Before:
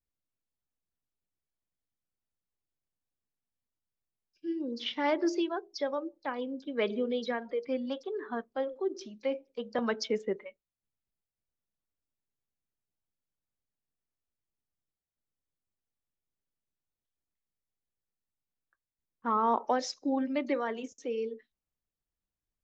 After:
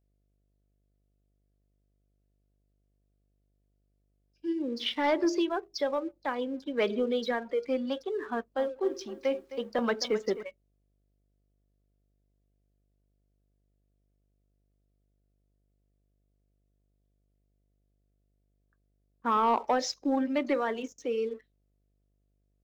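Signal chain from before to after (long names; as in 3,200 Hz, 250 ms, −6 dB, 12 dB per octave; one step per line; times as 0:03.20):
low-shelf EQ 120 Hz −8 dB
leveller curve on the samples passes 1
hum with harmonics 50 Hz, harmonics 14, −74 dBFS −7 dB per octave
0:08.32–0:10.43: feedback echo at a low word length 262 ms, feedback 35%, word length 10 bits, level −13.5 dB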